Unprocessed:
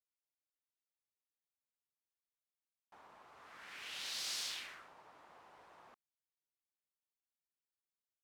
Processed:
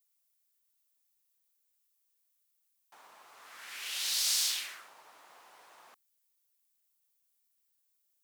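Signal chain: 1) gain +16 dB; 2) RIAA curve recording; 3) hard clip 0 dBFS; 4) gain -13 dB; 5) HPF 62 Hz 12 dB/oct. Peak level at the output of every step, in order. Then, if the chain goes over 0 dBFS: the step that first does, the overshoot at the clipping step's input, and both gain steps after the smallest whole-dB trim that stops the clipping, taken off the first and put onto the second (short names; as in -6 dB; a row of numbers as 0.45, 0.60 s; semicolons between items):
-13.0, -4.0, -4.0, -17.0, -17.0 dBFS; no overload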